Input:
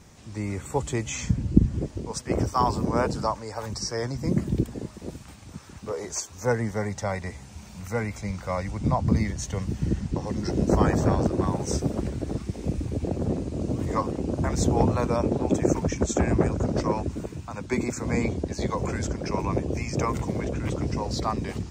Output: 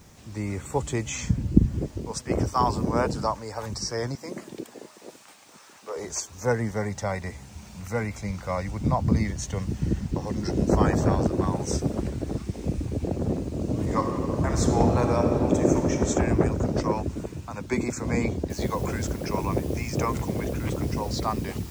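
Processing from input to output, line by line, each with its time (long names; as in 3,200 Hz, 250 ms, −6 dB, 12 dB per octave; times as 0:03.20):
0:04.15–0:05.96: high-pass filter 500 Hz
0:13.64–0:16.05: thrown reverb, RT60 2.6 s, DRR 3.5 dB
0:18.50: noise floor change −66 dB −49 dB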